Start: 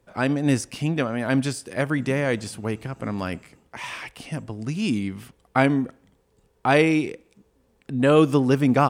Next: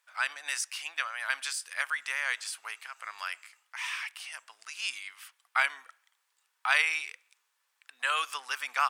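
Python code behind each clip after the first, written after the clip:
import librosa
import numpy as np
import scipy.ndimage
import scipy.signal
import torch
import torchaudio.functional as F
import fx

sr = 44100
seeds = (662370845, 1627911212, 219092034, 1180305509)

y = scipy.signal.sosfilt(scipy.signal.butter(4, 1200.0, 'highpass', fs=sr, output='sos'), x)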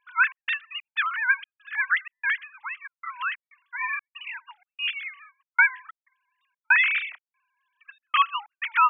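y = fx.sine_speech(x, sr)
y = fx.step_gate(y, sr, bpm=94, pattern='xx.xx.xxx.xxx.xx', floor_db=-60.0, edge_ms=4.5)
y = y * 10.0 ** (8.0 / 20.0)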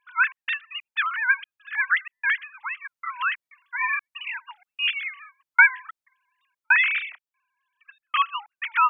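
y = fx.rider(x, sr, range_db=4, speed_s=2.0)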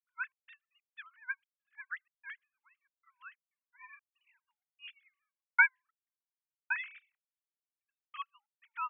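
y = fx.upward_expand(x, sr, threshold_db=-33.0, expansion=2.5)
y = y * 10.0 ** (-8.0 / 20.0)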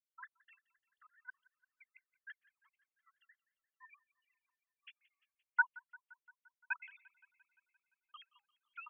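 y = fx.spec_dropout(x, sr, seeds[0], share_pct=69)
y = fx.echo_wet_highpass(y, sr, ms=173, feedback_pct=66, hz=1400.0, wet_db=-20.5)
y = y * 10.0 ** (-4.0 / 20.0)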